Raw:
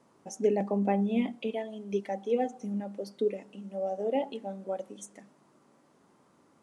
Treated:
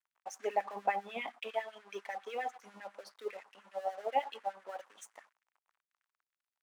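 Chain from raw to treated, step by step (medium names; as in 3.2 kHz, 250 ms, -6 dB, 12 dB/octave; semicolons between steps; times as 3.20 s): treble shelf 3.4 kHz -6.5 dB; crossover distortion -56.5 dBFS; LFO high-pass sine 10 Hz 820–1800 Hz; trim +1 dB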